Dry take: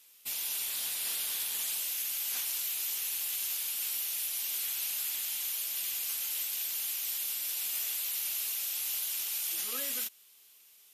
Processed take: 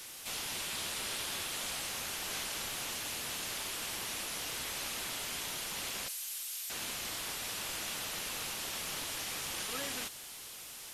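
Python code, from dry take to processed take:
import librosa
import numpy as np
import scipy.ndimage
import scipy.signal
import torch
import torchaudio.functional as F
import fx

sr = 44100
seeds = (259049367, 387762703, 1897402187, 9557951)

y = fx.delta_mod(x, sr, bps=64000, step_db=-41.0)
y = fx.differentiator(y, sr, at=(6.08, 6.7))
y = y * 10.0 ** (1.5 / 20.0)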